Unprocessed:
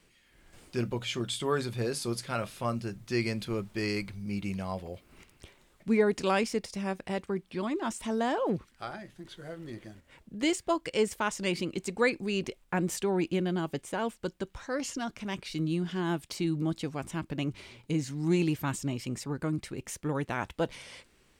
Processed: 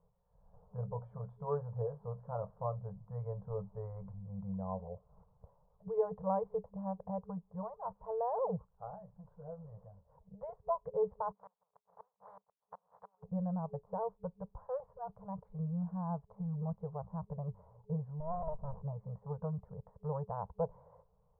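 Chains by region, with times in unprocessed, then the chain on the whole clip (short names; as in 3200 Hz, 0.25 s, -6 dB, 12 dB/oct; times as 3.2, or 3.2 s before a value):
11.31–13.22 spectral contrast lowered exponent 0.2 + HPF 1500 Hz 6 dB/oct + flipped gate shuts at -17 dBFS, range -33 dB
18.2–18.82 bell 5300 Hz -5 dB 0.81 oct + comb 3.1 ms, depth 81% + running maximum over 65 samples
whole clip: elliptic low-pass 1000 Hz, stop band 60 dB; FFT band-reject 200–430 Hz; gain -3 dB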